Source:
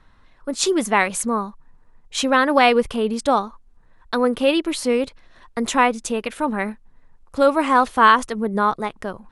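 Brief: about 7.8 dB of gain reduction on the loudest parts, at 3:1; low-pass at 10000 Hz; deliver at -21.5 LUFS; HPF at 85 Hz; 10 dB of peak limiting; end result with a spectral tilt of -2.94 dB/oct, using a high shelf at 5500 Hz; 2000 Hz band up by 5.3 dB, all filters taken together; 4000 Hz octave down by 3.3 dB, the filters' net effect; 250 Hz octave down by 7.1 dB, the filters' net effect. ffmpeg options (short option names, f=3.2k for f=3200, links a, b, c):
-af "highpass=85,lowpass=10k,equalizer=f=250:t=o:g=-8.5,equalizer=f=2k:t=o:g=9,equalizer=f=4k:t=o:g=-6,highshelf=f=5.5k:g=-7.5,acompressor=threshold=-16dB:ratio=3,volume=5dB,alimiter=limit=-9.5dB:level=0:latency=1"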